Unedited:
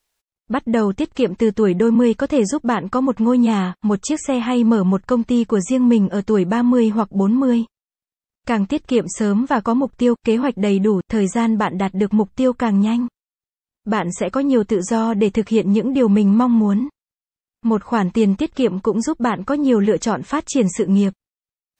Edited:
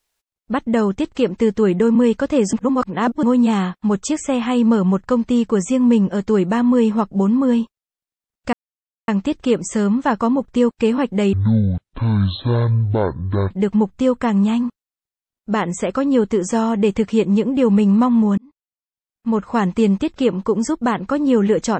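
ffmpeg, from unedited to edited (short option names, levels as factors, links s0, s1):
-filter_complex "[0:a]asplit=7[s0][s1][s2][s3][s4][s5][s6];[s0]atrim=end=2.532[s7];[s1]atrim=start=2.528:end=3.232,asetpts=PTS-STARTPTS,areverse[s8];[s2]atrim=start=3.228:end=8.53,asetpts=PTS-STARTPTS,afade=t=out:st=5.298:d=0.004:c=hsin,apad=pad_dur=0.55[s9];[s3]atrim=start=8.53:end=10.784,asetpts=PTS-STARTPTS,afade=t=in:d=0.004:c=hsin[s10];[s4]atrim=start=10.78:end=11.89,asetpts=PTS-STARTPTS,asetrate=22491,aresample=44100,atrim=end_sample=95982,asetpts=PTS-STARTPTS[s11];[s5]atrim=start=11.886:end=16.76,asetpts=PTS-STARTPTS,afade=t=out:st=4.87:d=0.004:c=hsin[s12];[s6]atrim=start=16.76,asetpts=PTS-STARTPTS,afade=t=in:d=1.12[s13];[s7][s8]acrossfade=d=0.004:c1=hsin:c2=hsin[s14];[s9][s10]concat=n=2:v=0:a=1[s15];[s14][s15]acrossfade=d=0.004:c1=hsin:c2=hsin[s16];[s16][s11]acrossfade=d=0.004:c1=hsin:c2=hsin[s17];[s12][s13]concat=n=2:v=0:a=1[s18];[s17][s18]acrossfade=d=0.004:c1=hsin:c2=hsin"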